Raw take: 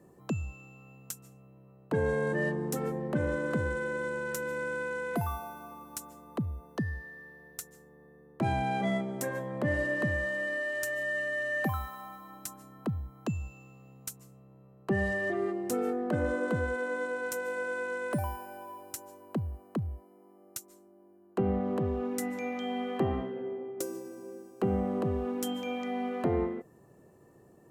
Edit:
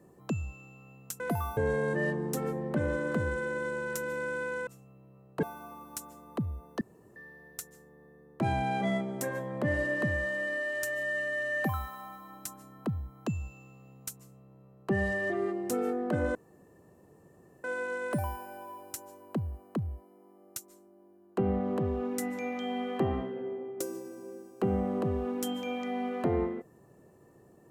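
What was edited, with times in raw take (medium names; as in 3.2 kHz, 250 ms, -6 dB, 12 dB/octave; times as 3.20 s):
1.20–1.96 s: swap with 5.06–5.43 s
6.81–7.16 s: room tone
16.35–17.64 s: room tone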